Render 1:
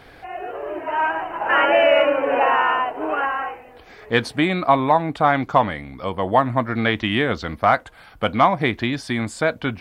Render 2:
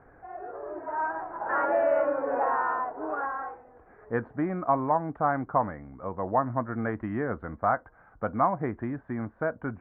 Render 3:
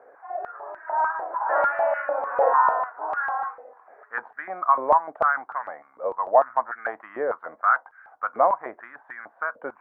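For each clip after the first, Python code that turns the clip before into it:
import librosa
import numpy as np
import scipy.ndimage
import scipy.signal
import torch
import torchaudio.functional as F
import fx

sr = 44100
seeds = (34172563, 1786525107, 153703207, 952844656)

y1 = scipy.signal.sosfilt(scipy.signal.butter(6, 1600.0, 'lowpass', fs=sr, output='sos'), x)
y1 = y1 * 10.0 ** (-8.5 / 20.0)
y2 = fx.filter_held_highpass(y1, sr, hz=6.7, low_hz=530.0, high_hz=1600.0)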